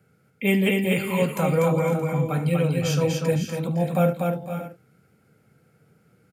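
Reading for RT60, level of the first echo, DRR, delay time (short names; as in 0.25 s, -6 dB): none, -15.5 dB, none, 73 ms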